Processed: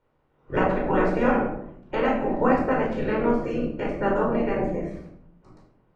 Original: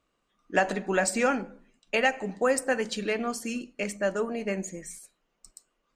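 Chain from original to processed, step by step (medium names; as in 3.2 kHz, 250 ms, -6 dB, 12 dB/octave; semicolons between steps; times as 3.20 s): spectral peaks clipped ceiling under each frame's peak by 22 dB; in parallel at +3 dB: compression, threshold -36 dBFS, peak gain reduction 17 dB; on the sum: Bessel low-pass 680 Hz, order 2; simulated room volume 1000 m³, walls furnished, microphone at 4.6 m; trim +1 dB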